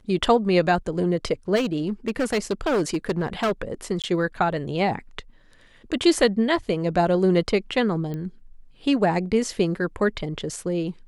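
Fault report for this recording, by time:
0:01.55–0:03.52: clipping −18.5 dBFS
0:04.02–0:04.04: drop-out 17 ms
0:08.14: click −21 dBFS

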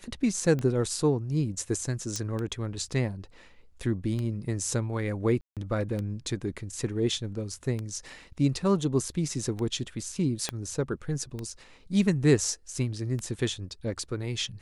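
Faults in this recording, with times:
scratch tick 33 1/3 rpm −21 dBFS
0:02.16: click −18 dBFS
0:05.41–0:05.57: drop-out 157 ms
0:10.49: click −14 dBFS

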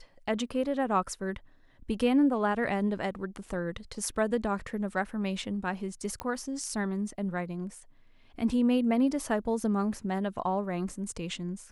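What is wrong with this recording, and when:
0:06.20: click −20 dBFS

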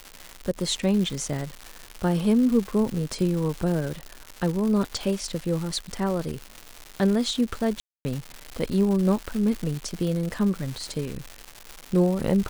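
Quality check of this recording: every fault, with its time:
surface crackle 310 per second −29 dBFS
0:07.80–0:08.05: drop-out 250 ms

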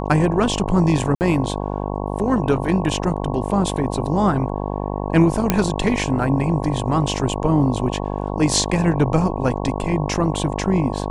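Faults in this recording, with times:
mains buzz 50 Hz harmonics 22 −25 dBFS
0:01.15–0:01.21: drop-out 59 ms
0:05.50: click −1 dBFS

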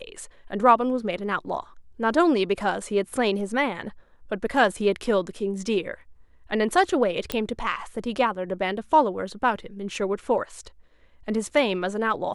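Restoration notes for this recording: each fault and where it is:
0:07.32: click −10 dBFS

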